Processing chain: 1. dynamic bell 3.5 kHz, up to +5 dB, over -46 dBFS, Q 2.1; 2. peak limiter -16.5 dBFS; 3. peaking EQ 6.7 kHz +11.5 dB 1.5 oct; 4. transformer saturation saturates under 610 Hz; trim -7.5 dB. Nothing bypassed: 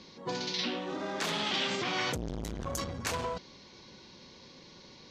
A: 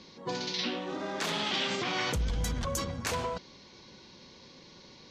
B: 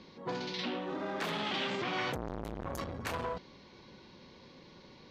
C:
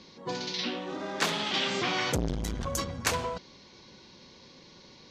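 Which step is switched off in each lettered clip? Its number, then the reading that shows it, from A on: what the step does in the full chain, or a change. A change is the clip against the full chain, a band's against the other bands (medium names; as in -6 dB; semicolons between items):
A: 4, crest factor change -1.5 dB; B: 3, 8 kHz band -10.0 dB; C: 2, crest factor change +4.5 dB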